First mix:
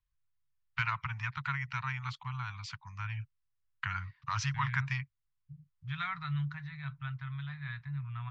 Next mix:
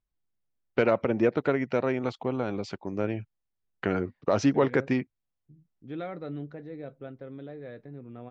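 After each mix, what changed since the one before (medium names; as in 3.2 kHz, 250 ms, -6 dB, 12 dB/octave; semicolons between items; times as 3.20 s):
second voice -10.5 dB; master: remove Chebyshev band-stop 140–1000 Hz, order 4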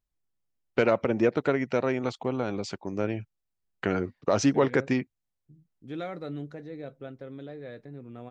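second voice: remove distance through air 100 m; master: remove distance through air 110 m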